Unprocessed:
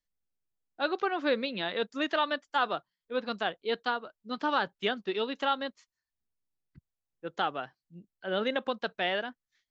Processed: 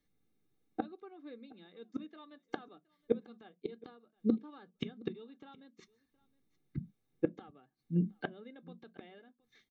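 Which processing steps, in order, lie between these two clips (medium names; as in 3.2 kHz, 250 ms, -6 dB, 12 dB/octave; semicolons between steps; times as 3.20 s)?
inverted gate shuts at -32 dBFS, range -37 dB; delay 718 ms -23.5 dB; reverberation RT60 0.20 s, pre-delay 3 ms, DRR 12 dB; trim +3.5 dB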